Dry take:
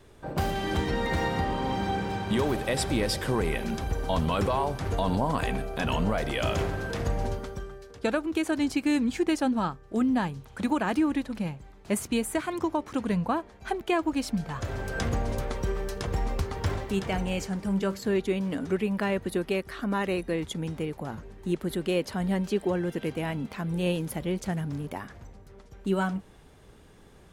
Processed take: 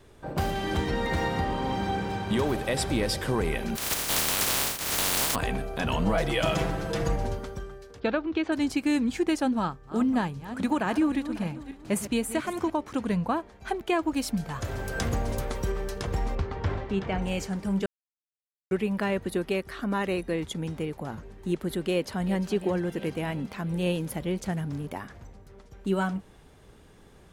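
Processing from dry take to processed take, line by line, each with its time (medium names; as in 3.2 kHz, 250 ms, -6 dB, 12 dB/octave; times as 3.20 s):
3.75–5.34 s: spectral contrast reduction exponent 0.12
6.05–7.16 s: comb 6.1 ms, depth 94%
8.00–8.52 s: low-pass 4.4 kHz 24 dB/octave
9.53–12.70 s: backward echo that repeats 273 ms, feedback 42%, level -12 dB
14.14–15.72 s: treble shelf 9.2 kHz +10 dB
16.35–17.22 s: Bessel low-pass 2.9 kHz
17.86–18.71 s: mute
21.91–22.46 s: echo throw 350 ms, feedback 65%, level -14.5 dB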